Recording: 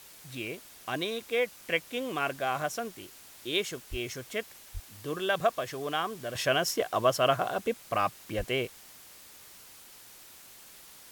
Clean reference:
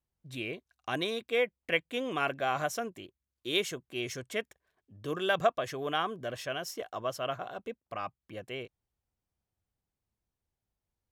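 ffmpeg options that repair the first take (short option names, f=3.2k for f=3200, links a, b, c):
-filter_complex "[0:a]asplit=3[a][b][c];[a]afade=t=out:st=3.9:d=0.02[d];[b]highpass=f=140:w=0.5412,highpass=f=140:w=1.3066,afade=t=in:st=3.9:d=0.02,afade=t=out:st=4.02:d=0.02[e];[c]afade=t=in:st=4.02:d=0.02[f];[d][e][f]amix=inputs=3:normalize=0,asplit=3[g][h][i];[g]afade=t=out:st=4.73:d=0.02[j];[h]highpass=f=140:w=0.5412,highpass=f=140:w=1.3066,afade=t=in:st=4.73:d=0.02,afade=t=out:st=4.85:d=0.02[k];[i]afade=t=in:st=4.85:d=0.02[l];[j][k][l]amix=inputs=3:normalize=0,asplit=3[m][n][o];[m]afade=t=out:st=8.37:d=0.02[p];[n]highpass=f=140:w=0.5412,highpass=f=140:w=1.3066,afade=t=in:st=8.37:d=0.02,afade=t=out:st=8.49:d=0.02[q];[o]afade=t=in:st=8.49:d=0.02[r];[p][q][r]amix=inputs=3:normalize=0,afwtdn=0.0028,asetnsamples=n=441:p=0,asendcmd='6.35 volume volume -9.5dB',volume=0dB"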